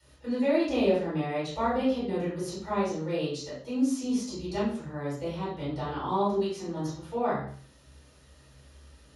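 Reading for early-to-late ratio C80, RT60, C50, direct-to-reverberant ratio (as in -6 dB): 6.5 dB, 0.50 s, 1.5 dB, -13.0 dB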